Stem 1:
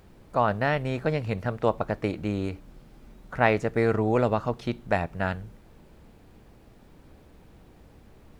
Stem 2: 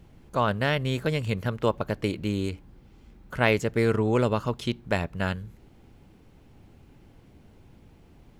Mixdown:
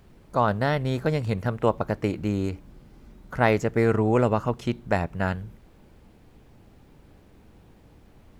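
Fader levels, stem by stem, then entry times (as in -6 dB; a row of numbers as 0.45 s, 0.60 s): -2.5 dB, -4.0 dB; 0.00 s, 0.00 s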